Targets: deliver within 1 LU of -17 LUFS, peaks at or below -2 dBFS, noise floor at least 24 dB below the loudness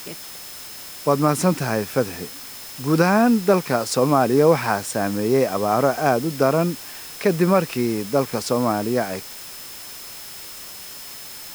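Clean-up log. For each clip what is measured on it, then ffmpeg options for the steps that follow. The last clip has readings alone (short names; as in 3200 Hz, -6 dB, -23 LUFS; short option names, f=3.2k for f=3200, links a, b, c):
steady tone 5200 Hz; tone level -43 dBFS; noise floor -37 dBFS; noise floor target -45 dBFS; loudness -20.5 LUFS; peak -4.0 dBFS; loudness target -17.0 LUFS
-> -af "bandreject=f=5.2k:w=30"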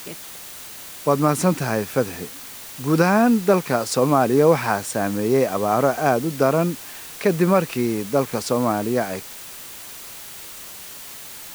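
steady tone none; noise floor -38 dBFS; noise floor target -45 dBFS
-> -af "afftdn=nr=7:nf=-38"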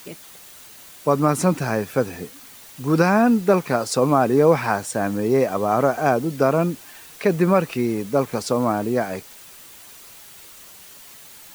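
noise floor -44 dBFS; noise floor target -45 dBFS
-> -af "afftdn=nr=6:nf=-44"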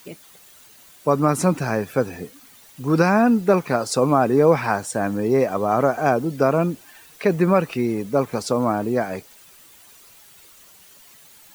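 noise floor -49 dBFS; loudness -20.5 LUFS; peak -4.5 dBFS; loudness target -17.0 LUFS
-> -af "volume=3.5dB,alimiter=limit=-2dB:level=0:latency=1"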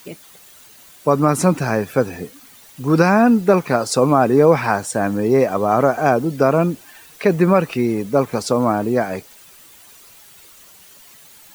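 loudness -17.0 LUFS; peak -2.0 dBFS; noise floor -46 dBFS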